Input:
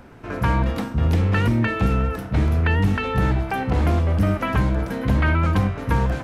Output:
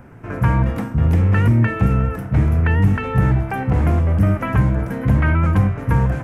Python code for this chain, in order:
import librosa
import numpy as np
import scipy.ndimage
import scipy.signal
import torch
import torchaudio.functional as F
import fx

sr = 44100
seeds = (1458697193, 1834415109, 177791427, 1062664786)

y = fx.graphic_eq(x, sr, hz=(125, 2000, 4000), db=(8, 3, -12))